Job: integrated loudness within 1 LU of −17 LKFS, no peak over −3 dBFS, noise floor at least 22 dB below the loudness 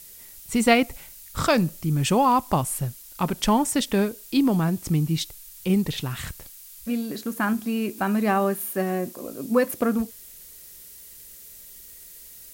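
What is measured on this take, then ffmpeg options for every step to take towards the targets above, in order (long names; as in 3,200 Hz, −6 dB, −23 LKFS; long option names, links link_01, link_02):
background noise floor −45 dBFS; target noise floor −46 dBFS; integrated loudness −24.0 LKFS; sample peak −5.5 dBFS; target loudness −17.0 LKFS
→ -af "afftdn=noise_reduction=6:noise_floor=-45"
-af "volume=7dB,alimiter=limit=-3dB:level=0:latency=1"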